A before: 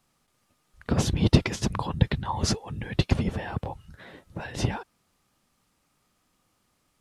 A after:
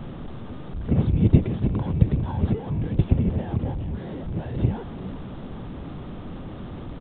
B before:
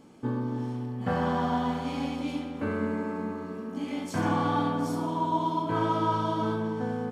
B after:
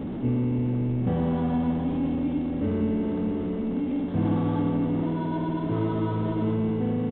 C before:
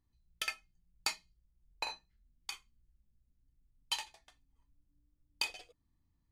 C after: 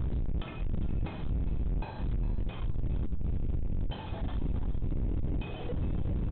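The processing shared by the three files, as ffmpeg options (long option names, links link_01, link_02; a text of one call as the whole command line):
ffmpeg -i in.wav -filter_complex "[0:a]aeval=exprs='val(0)+0.5*0.0501*sgn(val(0))':channel_layout=same,equalizer=frequency=2000:width_type=o:width=2.9:gain=-12,asplit=2[link_01][link_02];[link_02]acrusher=samples=18:mix=1:aa=0.000001,volume=-6dB[link_03];[link_01][link_03]amix=inputs=2:normalize=0,tiltshelf=frequency=650:gain=4,aresample=8000,aresample=44100,asplit=2[link_04][link_05];[link_05]asplit=3[link_06][link_07][link_08];[link_06]adelay=409,afreqshift=73,volume=-15dB[link_09];[link_07]adelay=818,afreqshift=146,volume=-23.9dB[link_10];[link_08]adelay=1227,afreqshift=219,volume=-32.7dB[link_11];[link_09][link_10][link_11]amix=inputs=3:normalize=0[link_12];[link_04][link_12]amix=inputs=2:normalize=0,volume=-4dB" out.wav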